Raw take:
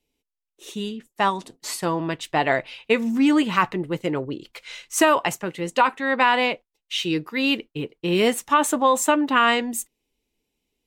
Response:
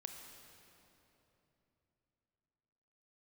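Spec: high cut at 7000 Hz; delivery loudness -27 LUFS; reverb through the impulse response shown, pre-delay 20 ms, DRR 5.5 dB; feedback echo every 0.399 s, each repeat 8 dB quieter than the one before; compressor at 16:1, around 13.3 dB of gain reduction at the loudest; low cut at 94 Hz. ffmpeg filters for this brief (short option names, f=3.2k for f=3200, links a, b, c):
-filter_complex "[0:a]highpass=94,lowpass=7k,acompressor=threshold=-26dB:ratio=16,aecho=1:1:399|798|1197|1596|1995:0.398|0.159|0.0637|0.0255|0.0102,asplit=2[a][b];[1:a]atrim=start_sample=2205,adelay=20[c];[b][c]afir=irnorm=-1:irlink=0,volume=-2dB[d];[a][d]amix=inputs=2:normalize=0,volume=3dB"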